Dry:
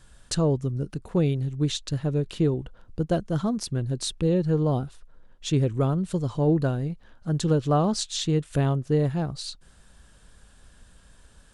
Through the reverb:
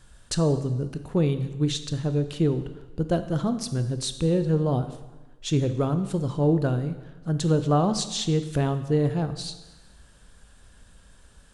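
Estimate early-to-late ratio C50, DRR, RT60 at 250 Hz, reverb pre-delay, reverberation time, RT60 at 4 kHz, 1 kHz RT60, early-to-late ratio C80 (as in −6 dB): 11.5 dB, 9.5 dB, 1.2 s, 7 ms, 1.2 s, 1.1 s, 1.2 s, 13.0 dB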